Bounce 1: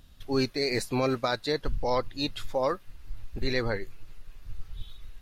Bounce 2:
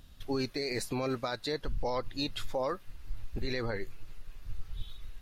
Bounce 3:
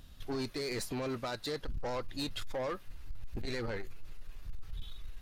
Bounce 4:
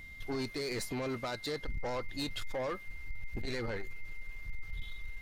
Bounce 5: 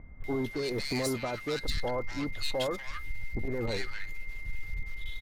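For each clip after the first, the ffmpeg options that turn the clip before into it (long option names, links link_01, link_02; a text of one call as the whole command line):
ffmpeg -i in.wav -af "alimiter=limit=-23.5dB:level=0:latency=1:release=90" out.wav
ffmpeg -i in.wav -af "asoftclip=type=tanh:threshold=-32.5dB,volume=1dB" out.wav
ffmpeg -i in.wav -af "aeval=exprs='val(0)+0.00398*sin(2*PI*2100*n/s)':channel_layout=same" out.wav
ffmpeg -i in.wav -filter_complex "[0:a]acrossover=split=1300[link_01][link_02];[link_02]adelay=240[link_03];[link_01][link_03]amix=inputs=2:normalize=0,volume=5dB" out.wav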